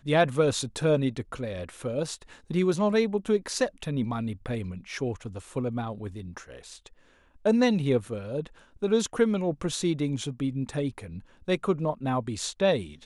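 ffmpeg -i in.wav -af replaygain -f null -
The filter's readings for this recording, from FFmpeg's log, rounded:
track_gain = +6.6 dB
track_peak = 0.263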